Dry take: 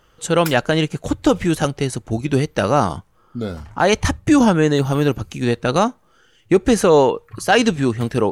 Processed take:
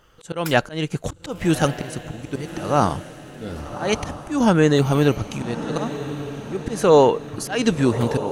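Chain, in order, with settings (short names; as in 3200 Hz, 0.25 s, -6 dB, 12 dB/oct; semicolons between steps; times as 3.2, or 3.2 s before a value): auto swell 0.247 s; diffused feedback echo 1.164 s, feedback 51%, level -11.5 dB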